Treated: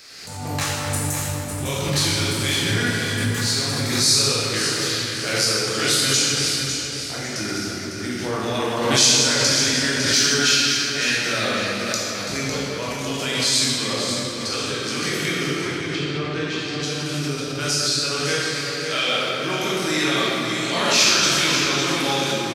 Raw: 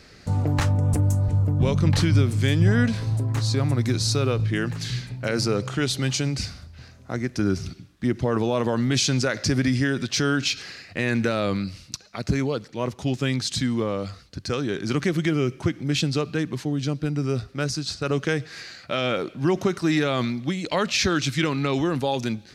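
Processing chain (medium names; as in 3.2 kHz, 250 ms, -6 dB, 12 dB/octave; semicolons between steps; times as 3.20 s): tilt EQ +4 dB/octave; feedback delay 553 ms, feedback 35%, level -8 dB; 15.54–16.82 s: low-pass that closes with the level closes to 1.2 kHz, closed at -18 dBFS; reverberation RT60 3.1 s, pre-delay 13 ms, DRR -8 dB; swell ahead of each attack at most 39 dB/s; trim -5.5 dB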